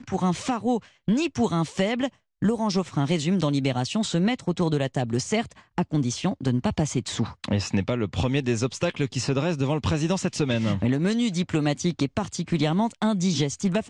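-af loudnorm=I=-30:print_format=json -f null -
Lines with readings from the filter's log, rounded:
"input_i" : "-25.4",
"input_tp" : "-11.0",
"input_lra" : "1.3",
"input_thresh" : "-35.4",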